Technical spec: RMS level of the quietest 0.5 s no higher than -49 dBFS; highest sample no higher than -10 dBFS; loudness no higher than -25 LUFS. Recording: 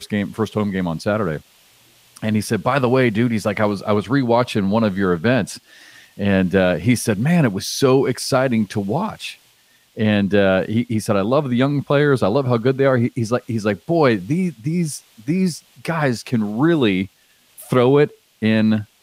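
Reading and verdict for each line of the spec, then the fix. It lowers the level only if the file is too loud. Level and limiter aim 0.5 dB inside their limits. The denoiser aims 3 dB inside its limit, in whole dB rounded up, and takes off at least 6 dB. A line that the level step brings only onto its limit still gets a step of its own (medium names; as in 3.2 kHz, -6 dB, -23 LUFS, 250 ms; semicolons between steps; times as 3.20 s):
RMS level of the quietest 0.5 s -56 dBFS: pass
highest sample -3.5 dBFS: fail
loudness -19.0 LUFS: fail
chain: trim -6.5 dB; peak limiter -10.5 dBFS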